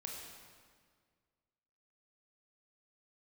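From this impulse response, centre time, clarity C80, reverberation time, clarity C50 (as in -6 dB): 82 ms, 3.0 dB, 1.8 s, 1.5 dB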